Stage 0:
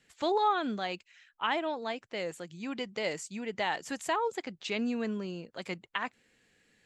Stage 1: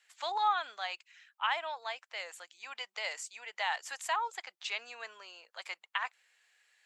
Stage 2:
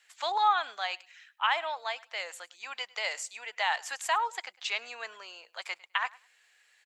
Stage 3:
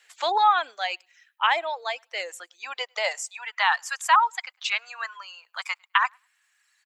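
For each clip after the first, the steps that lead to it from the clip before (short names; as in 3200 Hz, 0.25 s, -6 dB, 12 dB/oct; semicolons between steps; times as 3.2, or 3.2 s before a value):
HPF 780 Hz 24 dB/oct
feedback echo 0.103 s, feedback 18%, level -23 dB; gain +4.5 dB
reverb removal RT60 1.9 s; high-pass sweep 350 Hz -> 1100 Hz, 2.59–3.55; gain +5 dB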